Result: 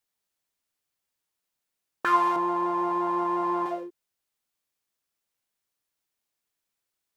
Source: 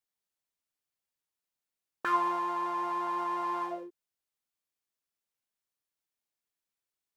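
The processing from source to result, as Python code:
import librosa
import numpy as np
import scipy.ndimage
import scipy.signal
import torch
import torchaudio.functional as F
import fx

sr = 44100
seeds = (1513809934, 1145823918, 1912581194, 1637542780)

y = fx.tilt_shelf(x, sr, db=8.0, hz=840.0, at=(2.36, 3.66))
y = y * 10.0 ** (6.0 / 20.0)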